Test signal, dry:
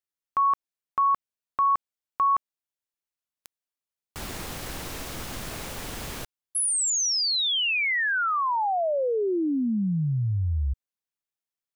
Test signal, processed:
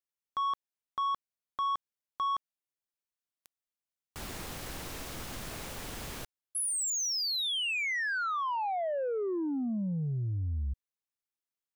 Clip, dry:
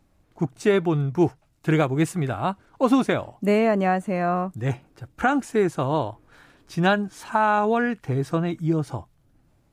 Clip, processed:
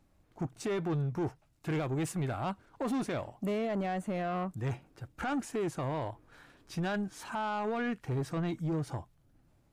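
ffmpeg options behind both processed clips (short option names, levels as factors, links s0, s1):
-af "alimiter=limit=0.141:level=0:latency=1:release=14,asoftclip=type=tanh:threshold=0.075,volume=0.562"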